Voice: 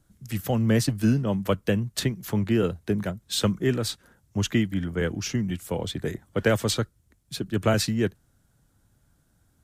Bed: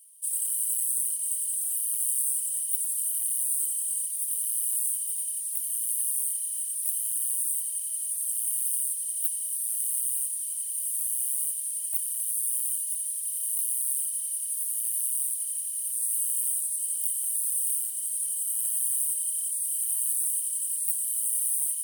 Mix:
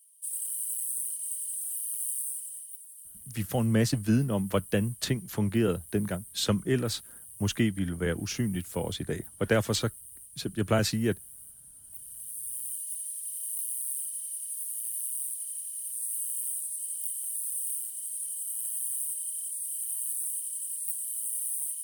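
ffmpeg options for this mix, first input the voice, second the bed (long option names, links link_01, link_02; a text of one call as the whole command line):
ffmpeg -i stem1.wav -i stem2.wav -filter_complex "[0:a]adelay=3050,volume=-3dB[link_01];[1:a]volume=8.5dB,afade=type=out:start_time=2.09:duration=0.73:silence=0.199526,afade=type=in:start_time=11.82:duration=1.12:silence=0.199526[link_02];[link_01][link_02]amix=inputs=2:normalize=0" out.wav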